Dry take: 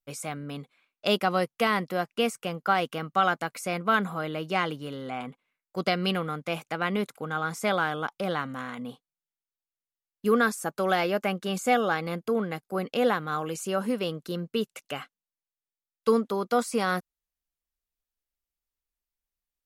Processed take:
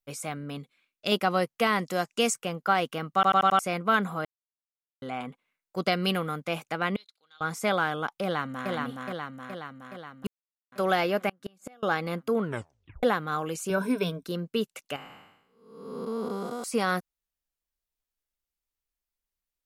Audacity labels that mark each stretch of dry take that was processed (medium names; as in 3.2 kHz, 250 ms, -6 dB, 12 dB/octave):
0.580000	1.120000	peaking EQ 870 Hz -8.5 dB 1.8 oct
1.790000	2.340000	peaking EQ 7 kHz +14 dB 0.99 oct
3.140000	3.140000	stutter in place 0.09 s, 5 plays
4.250000	5.020000	mute
5.920000	6.410000	treble shelf 10 kHz +10 dB
6.960000	7.410000	band-pass filter 4.1 kHz, Q 7.9
8.230000	8.700000	echo throw 420 ms, feedback 65%, level -2.5 dB
10.270000	10.720000	mute
11.290000	11.830000	inverted gate shuts at -21 dBFS, range -32 dB
12.410000	12.410000	tape stop 0.62 s
13.690000	14.240000	rippled EQ curve crests per octave 1.6, crest to trough 16 dB
14.960000	16.640000	spectral blur width 496 ms